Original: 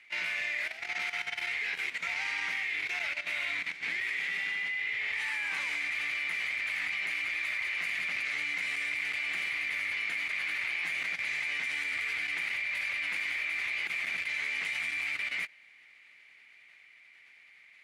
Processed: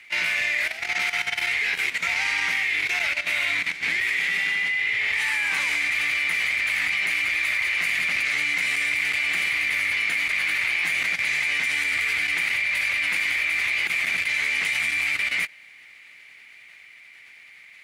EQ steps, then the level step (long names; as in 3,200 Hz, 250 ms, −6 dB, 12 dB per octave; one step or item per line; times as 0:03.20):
low-shelf EQ 140 Hz +6.5 dB
high-shelf EQ 7,100 Hz +9 dB
+8.5 dB